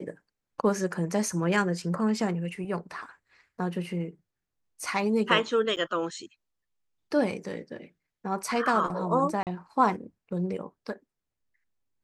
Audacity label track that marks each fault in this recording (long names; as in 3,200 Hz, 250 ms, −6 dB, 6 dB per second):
5.760000	5.770000	drop-out 8.5 ms
9.430000	9.470000	drop-out 38 ms